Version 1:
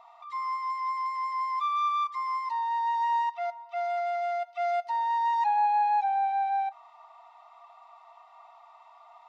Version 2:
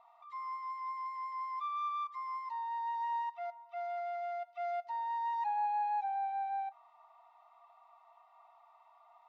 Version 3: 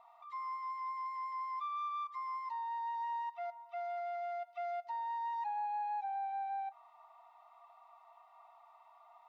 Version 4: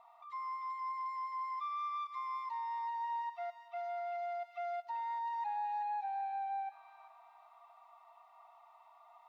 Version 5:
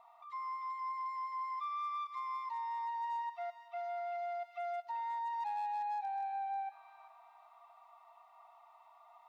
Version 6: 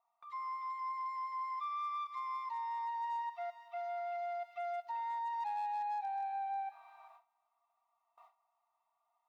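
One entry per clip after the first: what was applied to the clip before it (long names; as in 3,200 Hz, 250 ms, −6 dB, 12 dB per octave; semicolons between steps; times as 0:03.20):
high-shelf EQ 3,800 Hz −9.5 dB; level −8.5 dB
downward compressor 2.5 to 1, threshold −40 dBFS, peak gain reduction 6.5 dB; level +1.5 dB
delay with a high-pass on its return 389 ms, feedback 32%, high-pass 2,100 Hz, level −5 dB
hard clipping −34 dBFS, distortion −33 dB
noise gate with hold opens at −49 dBFS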